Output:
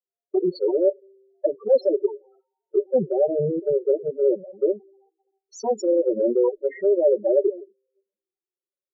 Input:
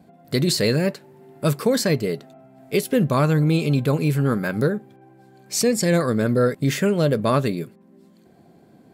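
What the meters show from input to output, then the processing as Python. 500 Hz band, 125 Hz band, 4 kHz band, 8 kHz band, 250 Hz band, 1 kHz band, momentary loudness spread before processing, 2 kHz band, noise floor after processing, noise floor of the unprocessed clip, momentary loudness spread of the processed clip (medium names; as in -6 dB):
+3.0 dB, -20.0 dB, under -20 dB, under -15 dB, -7.0 dB, -8.5 dB, 8 LU, under -20 dB, under -85 dBFS, -53 dBFS, 8 LU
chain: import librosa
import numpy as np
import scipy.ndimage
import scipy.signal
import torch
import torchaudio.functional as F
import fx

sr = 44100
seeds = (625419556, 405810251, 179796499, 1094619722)

y = fx.lower_of_two(x, sr, delay_ms=5.3)
y = fx.lowpass_res(y, sr, hz=6700.0, q=3.4)
y = fx.peak_eq(y, sr, hz=450.0, db=12.5, octaves=1.9)
y = fx.level_steps(y, sr, step_db=14)
y = fx.bass_treble(y, sr, bass_db=-14, treble_db=-10)
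y = fx.spec_topn(y, sr, count=4)
y = fx.band_widen(y, sr, depth_pct=100)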